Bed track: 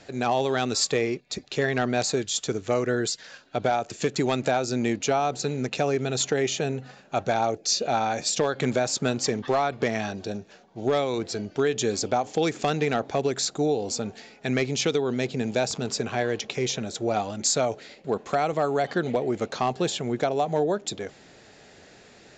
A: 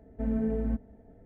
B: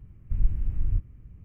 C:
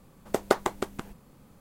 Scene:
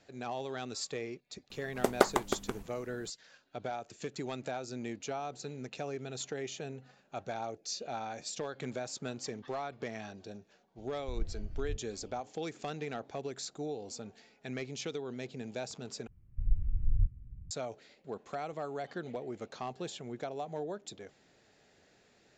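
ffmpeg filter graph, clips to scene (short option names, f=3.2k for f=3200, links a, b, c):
-filter_complex "[2:a]asplit=2[a][b];[0:a]volume=-14.5dB[c];[b]asubboost=boost=12:cutoff=240[d];[c]asplit=2[e][f];[e]atrim=end=16.074[g];[d]atrim=end=1.44,asetpts=PTS-STARTPTS,volume=-15dB[h];[f]atrim=start=17.506[i];[3:a]atrim=end=1.6,asetpts=PTS-STARTPTS,volume=-1.5dB,afade=t=in:d=0.004:c=hsin,afade=t=out:st=1.596:d=0.004:c=hsin,adelay=1500[j];[a]atrim=end=1.44,asetpts=PTS-STARTPTS,volume=-13dB,afade=t=in:d=0.004:c=hsin,afade=t=out:st=1.436:d=0.004:c=hsin,adelay=10770[k];[g][h]acrossfade=d=0.004:c1=hsin:c2=hsin[l];[l][i]acrossfade=d=0.004:c1=hsin:c2=hsin[m];[m][j][k]amix=inputs=3:normalize=0"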